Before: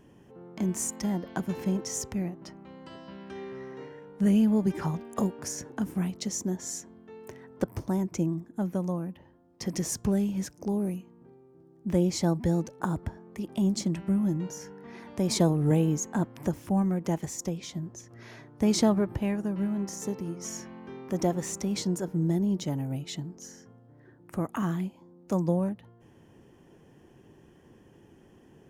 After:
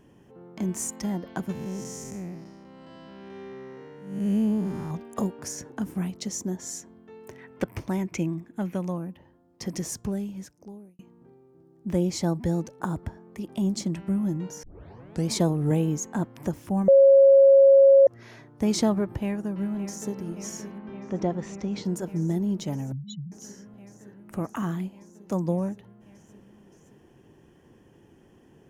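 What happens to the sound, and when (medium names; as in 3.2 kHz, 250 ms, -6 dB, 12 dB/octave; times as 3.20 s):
1.52–4.91 s: spectral blur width 260 ms
7.38–8.98 s: peaking EQ 2.4 kHz +12.5 dB 1 oct
9.65–10.99 s: fade out
14.63 s: tape start 0.68 s
16.88–18.07 s: bleep 547 Hz -11 dBFS
19.17–20.16 s: echo throw 570 ms, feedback 85%, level -11.5 dB
20.78–21.85 s: distance through air 170 m
22.92–23.32 s: spectral contrast enhancement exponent 4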